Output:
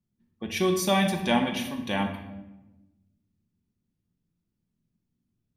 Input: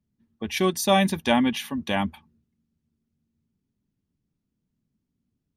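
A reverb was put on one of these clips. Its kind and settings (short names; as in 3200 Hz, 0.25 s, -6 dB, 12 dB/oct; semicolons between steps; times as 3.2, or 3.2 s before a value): shoebox room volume 450 m³, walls mixed, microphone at 0.9 m; gain -4 dB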